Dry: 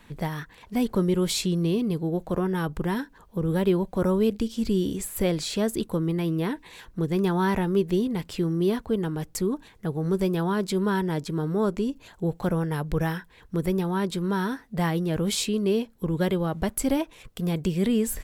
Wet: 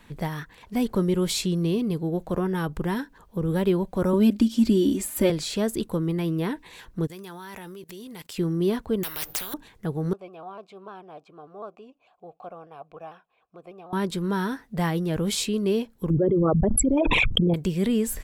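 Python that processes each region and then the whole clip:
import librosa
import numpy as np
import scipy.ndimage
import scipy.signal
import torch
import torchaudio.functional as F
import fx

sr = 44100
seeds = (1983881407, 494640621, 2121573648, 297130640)

y = fx.chain(x, sr, fx.highpass(hz=100.0, slope=6),
    fx.peak_eq(hz=230.0, db=6.0, octaves=1.0),
    fx.comb(ms=3.3, depth=0.85), at=(4.13, 5.3))
y = fx.chain(y, sr, fx.tilt_eq(slope=3.0),
    fx.level_steps(step_db=20), at=(7.07, 8.38))
y = fx.chain(y, sr, fx.resample_bad(factor=3, down='filtered', up='zero_stuff'),
    fx.spectral_comp(ratio=10.0), at=(9.03, 9.54))
y = fx.chain(y, sr, fx.vowel_filter(vowel='a'),
    fx.vibrato_shape(shape='saw_down', rate_hz=6.7, depth_cents=100.0), at=(10.13, 13.93))
y = fx.chain(y, sr, fx.envelope_sharpen(power=3.0),
    fx.peak_eq(hz=1200.0, db=13.0, octaves=0.75),
    fx.env_flatten(amount_pct=100), at=(16.1, 17.54))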